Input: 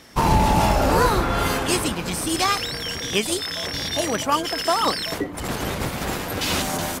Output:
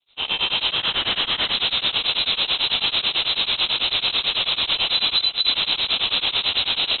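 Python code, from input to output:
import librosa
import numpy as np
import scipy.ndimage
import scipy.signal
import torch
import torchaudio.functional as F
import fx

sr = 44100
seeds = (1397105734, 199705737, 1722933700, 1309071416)

p1 = fx.fade_in_head(x, sr, length_s=2.27)
p2 = scipy.signal.sosfilt(scipy.signal.butter(4, 380.0, 'highpass', fs=sr, output='sos'), p1)
p3 = fx.over_compress(p2, sr, threshold_db=-27.0, ratio=-1.0)
p4 = p2 + (p3 * librosa.db_to_amplitude(2.5))
p5 = fx.schmitt(p4, sr, flips_db=-18.0, at=(4.76, 5.54))
p6 = fx.sample_hold(p5, sr, seeds[0], rate_hz=2200.0, jitter_pct=20)
p7 = fx.fixed_phaser(p6, sr, hz=1600.0, stages=6, at=(0.72, 1.54))
p8 = 10.0 ** (-23.5 / 20.0) * (np.abs((p7 / 10.0 ** (-23.5 / 20.0) + 3.0) % 4.0 - 2.0) - 1.0)
p9 = p8 + fx.echo_single(p8, sr, ms=459, db=-8.5, dry=0)
p10 = fx.freq_invert(p9, sr, carrier_hz=4000)
p11 = p10 * np.abs(np.cos(np.pi * 9.1 * np.arange(len(p10)) / sr))
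y = p11 * librosa.db_to_amplitude(8.5)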